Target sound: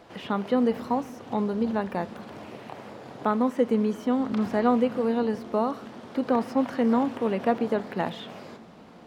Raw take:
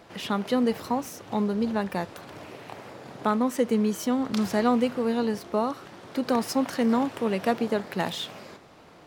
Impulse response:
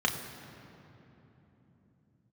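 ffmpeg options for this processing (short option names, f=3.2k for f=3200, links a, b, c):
-filter_complex "[0:a]acrossover=split=2800[a][b];[b]acompressor=threshold=-49dB:ratio=4:attack=1:release=60[c];[a][c]amix=inputs=2:normalize=0,highshelf=f=5.2k:g=-5.5,asplit=2[d][e];[1:a]atrim=start_sample=2205,lowpass=3.2k[f];[e][f]afir=irnorm=-1:irlink=0,volume=-24dB[g];[d][g]amix=inputs=2:normalize=0"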